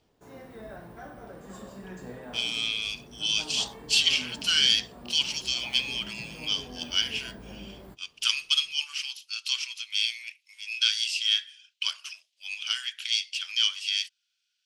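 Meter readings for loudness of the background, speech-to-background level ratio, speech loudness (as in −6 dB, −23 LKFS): −45.0 LKFS, 18.5 dB, −26.5 LKFS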